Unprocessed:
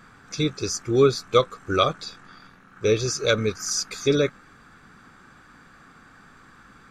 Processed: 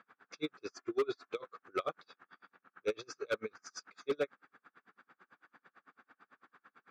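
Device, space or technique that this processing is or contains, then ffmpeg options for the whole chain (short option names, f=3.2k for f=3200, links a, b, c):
helicopter radio: -filter_complex "[0:a]asettb=1/sr,asplit=3[a][b][c];[a]atrim=end=0.734[d];[b]atrim=start=0.73:end=1.29,asetpts=PTS-STARTPTS,afade=t=in:d=0.004:c=qsin,afade=t=out:st=0.556:d=0.004:c=qsin,aecho=1:1:2.9:0.88,atrim=end_sample=24696[e];[c]atrim=start=1.286[f];[d][e]acrossfade=d=0.004:c1=hsin:c2=qsin[g];[g][f]acrossfade=d=0.004:c1=qsin:c2=hsin,highpass=380,lowpass=2.7k,aeval=exprs='val(0)*pow(10,-37*(0.5-0.5*cos(2*PI*9*n/s))/20)':c=same,asoftclip=type=hard:threshold=-21.5dB,volume=-4.5dB"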